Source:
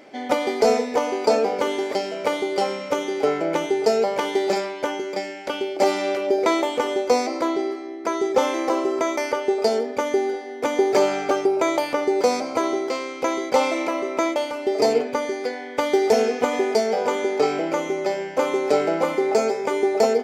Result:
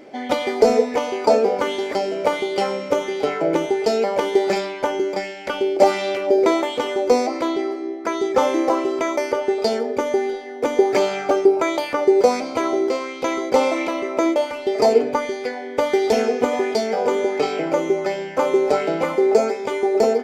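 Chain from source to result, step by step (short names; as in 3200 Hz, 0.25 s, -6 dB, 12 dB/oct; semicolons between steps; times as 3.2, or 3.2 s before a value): low shelf 210 Hz +8.5 dB; de-hum 146.8 Hz, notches 3; in parallel at 0 dB: vocal rider 2 s; on the sum: LFO bell 1.4 Hz 350–3800 Hz +7 dB; gain -7.5 dB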